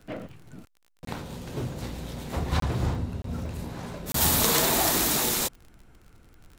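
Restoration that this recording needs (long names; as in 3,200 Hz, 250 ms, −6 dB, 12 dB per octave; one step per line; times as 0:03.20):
click removal
repair the gap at 0:01.05/0:02.60/0:03.22/0:04.12, 23 ms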